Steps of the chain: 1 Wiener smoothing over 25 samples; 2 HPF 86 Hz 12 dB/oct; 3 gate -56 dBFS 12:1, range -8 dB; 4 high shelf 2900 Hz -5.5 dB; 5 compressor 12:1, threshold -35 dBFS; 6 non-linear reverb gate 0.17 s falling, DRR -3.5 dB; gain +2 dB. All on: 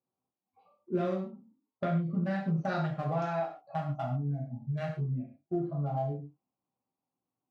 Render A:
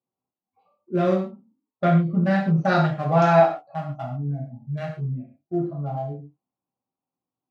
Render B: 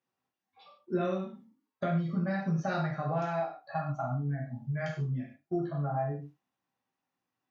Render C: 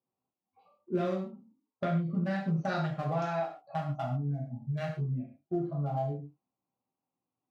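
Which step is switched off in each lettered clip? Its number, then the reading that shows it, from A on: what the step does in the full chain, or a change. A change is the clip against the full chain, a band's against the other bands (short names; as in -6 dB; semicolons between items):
5, mean gain reduction 6.5 dB; 1, 2 kHz band +2.5 dB; 4, 4 kHz band +3.0 dB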